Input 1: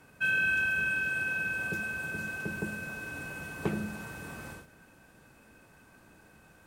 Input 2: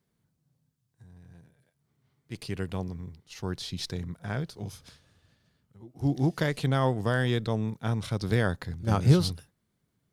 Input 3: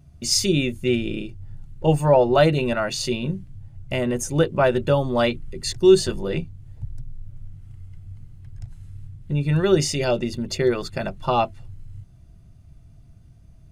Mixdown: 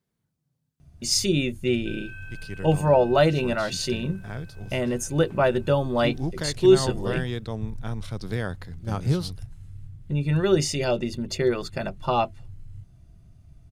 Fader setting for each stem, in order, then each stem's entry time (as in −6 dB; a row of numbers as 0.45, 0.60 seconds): −15.5, −3.5, −2.5 decibels; 1.65, 0.00, 0.80 seconds